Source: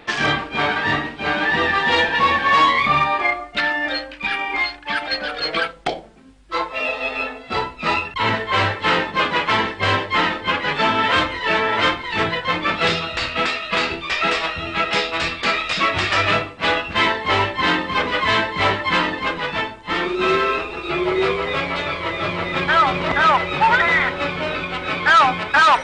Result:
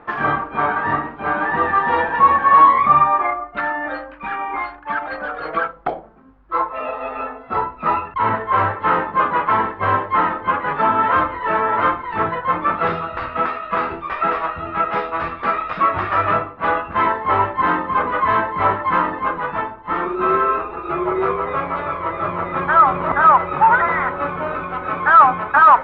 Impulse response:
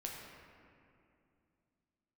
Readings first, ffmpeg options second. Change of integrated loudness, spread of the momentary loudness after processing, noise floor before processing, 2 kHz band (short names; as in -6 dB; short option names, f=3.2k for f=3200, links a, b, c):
+1.0 dB, 12 LU, -38 dBFS, -4.0 dB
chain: -af "lowpass=f=1.2k:t=q:w=2.4,volume=-2dB"